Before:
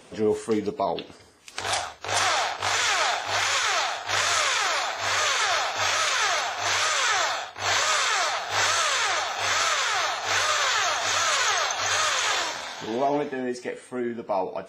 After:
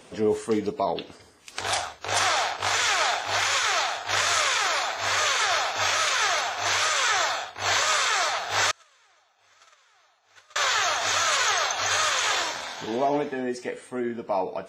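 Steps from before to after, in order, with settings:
0:08.71–0:10.56: noise gate −18 dBFS, range −36 dB

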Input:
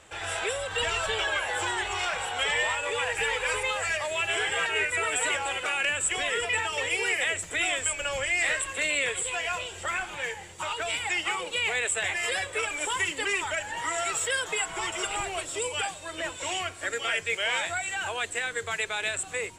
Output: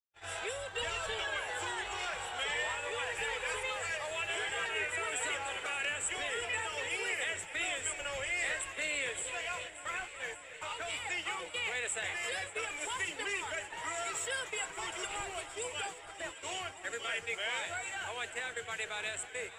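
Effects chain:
noise gate −34 dBFS, range −53 dB
on a send: delay that swaps between a low-pass and a high-pass 288 ms, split 1,800 Hz, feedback 87%, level −13 dB
on the sum: level −8.5 dB

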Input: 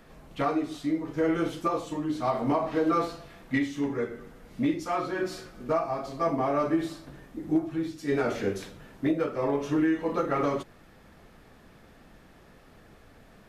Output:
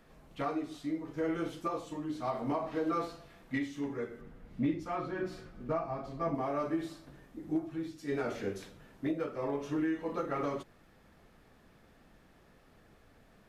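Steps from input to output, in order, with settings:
0:04.21–0:06.35: bass and treble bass +7 dB, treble −8 dB
level −7.5 dB

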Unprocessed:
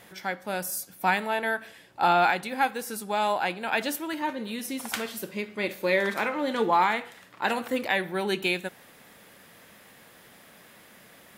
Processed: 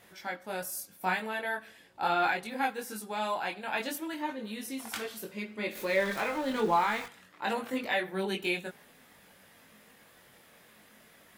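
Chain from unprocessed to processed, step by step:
0:05.75–0:07.06: converter with a step at zero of −33.5 dBFS
multi-voice chorus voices 4, 0.47 Hz, delay 21 ms, depth 2.5 ms
level −2.5 dB

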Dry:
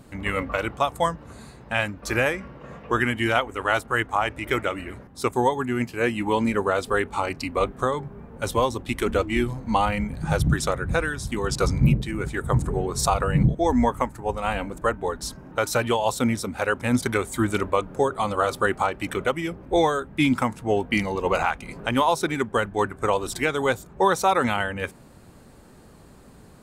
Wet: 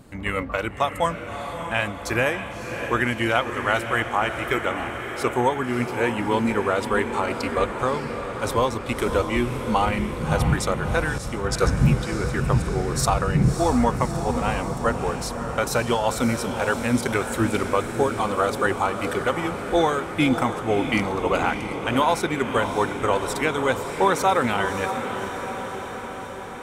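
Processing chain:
feedback delay with all-pass diffusion 609 ms, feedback 68%, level −8 dB
0:11.18–0:11.77: multiband upward and downward expander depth 70%

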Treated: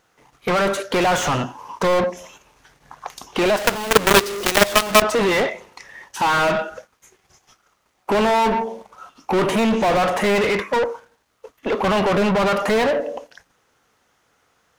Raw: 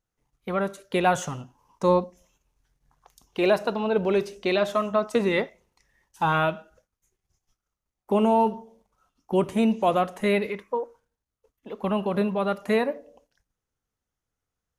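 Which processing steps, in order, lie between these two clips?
mid-hump overdrive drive 38 dB, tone 2,500 Hz, clips at −9 dBFS
0:03.56–0:05.02: log-companded quantiser 2 bits
level −2 dB

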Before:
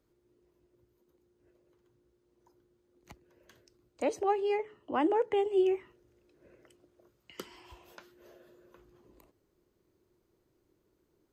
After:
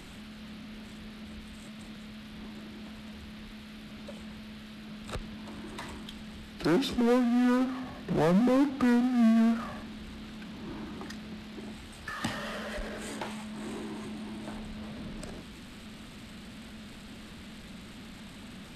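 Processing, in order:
power curve on the samples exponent 0.5
change of speed 0.604×
noise in a band 1,100–4,200 Hz −54 dBFS

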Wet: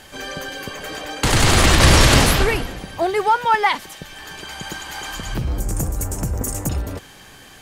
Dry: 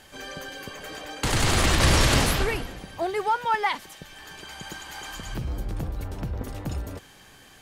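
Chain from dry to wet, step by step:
0:05.60–0:06.69: high shelf with overshoot 5,300 Hz +12.5 dB, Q 3
level +7.5 dB

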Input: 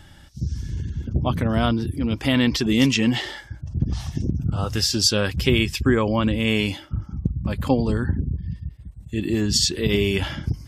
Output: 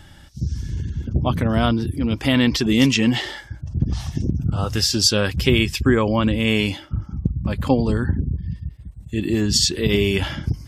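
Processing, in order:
0:06.69–0:07.84: high-shelf EQ 11,000 Hz −6.5 dB
level +2 dB

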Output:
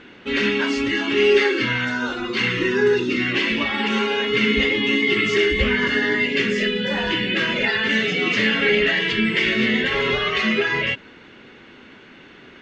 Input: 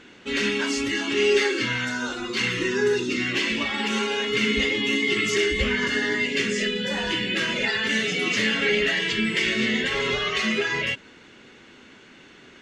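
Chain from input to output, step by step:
low-pass filter 3,500 Hz 12 dB per octave
level +4.5 dB

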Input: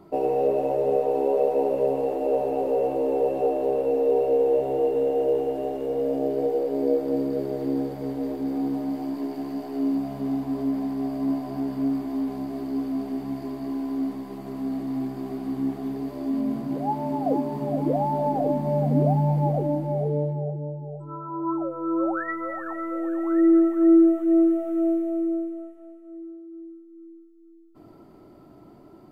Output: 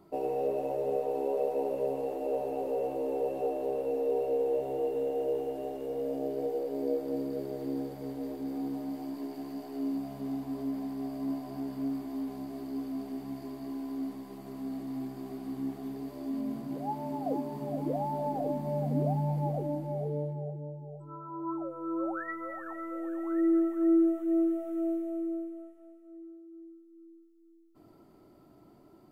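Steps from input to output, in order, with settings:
high-shelf EQ 4,200 Hz +7 dB
level −8.5 dB

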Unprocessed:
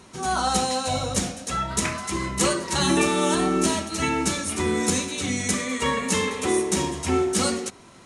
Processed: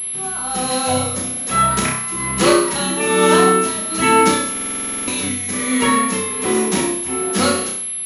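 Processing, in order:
high-pass filter 120 Hz 12 dB per octave
automatic gain control
amplitude tremolo 1.2 Hz, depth 72%
noise in a band 2,000–4,100 Hz −47 dBFS
on a send: flutter between parallel walls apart 5.4 metres, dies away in 0.54 s
on the sum: buffer that repeats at 0:04.52, samples 2,048, times 11
switching amplifier with a slow clock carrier 11,000 Hz

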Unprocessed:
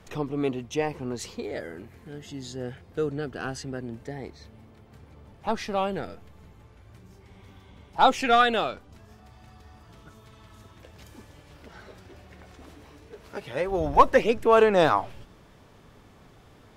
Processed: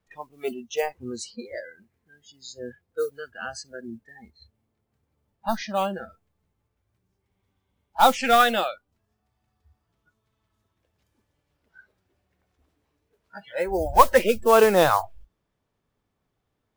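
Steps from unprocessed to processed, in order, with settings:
noise that follows the level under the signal 18 dB
noise reduction from a noise print of the clip's start 26 dB
level +2 dB

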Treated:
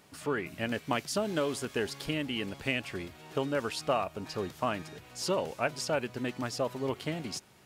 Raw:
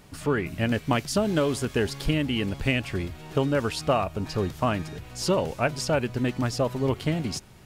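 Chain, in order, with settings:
high-pass filter 310 Hz 6 dB per octave
level −4.5 dB

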